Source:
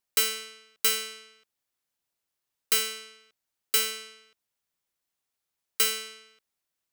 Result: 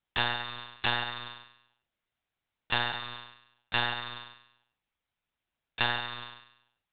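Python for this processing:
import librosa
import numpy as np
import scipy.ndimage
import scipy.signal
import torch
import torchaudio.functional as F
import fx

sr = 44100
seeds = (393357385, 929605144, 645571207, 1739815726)

y = fx.rev_gated(x, sr, seeds[0], gate_ms=450, shape='falling', drr_db=3.5)
y = y * np.sin(2.0 * np.pi * 1200.0 * np.arange(len(y)) / sr)
y = fx.lpc_monotone(y, sr, seeds[1], pitch_hz=120.0, order=10)
y = y * librosa.db_to_amplitude(4.5)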